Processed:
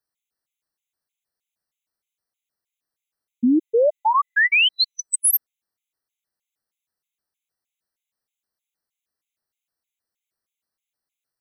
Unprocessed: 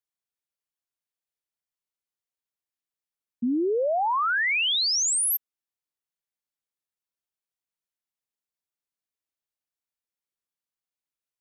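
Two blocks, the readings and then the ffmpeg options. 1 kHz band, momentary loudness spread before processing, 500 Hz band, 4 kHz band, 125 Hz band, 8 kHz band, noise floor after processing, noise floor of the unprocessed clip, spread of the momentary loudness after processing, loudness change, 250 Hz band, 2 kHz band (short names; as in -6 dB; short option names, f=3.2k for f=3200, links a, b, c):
+4.0 dB, 7 LU, +5.5 dB, +3.0 dB, n/a, +1.0 dB, under -85 dBFS, under -85 dBFS, 7 LU, +4.5 dB, +7.0 dB, +6.0 dB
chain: -af "bandreject=f=1k:w=17,afftfilt=real='re*gt(sin(2*PI*3.2*pts/sr)*(1-2*mod(floor(b*sr/1024/2000),2)),0)':imag='im*gt(sin(2*PI*3.2*pts/sr)*(1-2*mod(floor(b*sr/1024/2000),2)),0)':win_size=1024:overlap=0.75,volume=8.5dB"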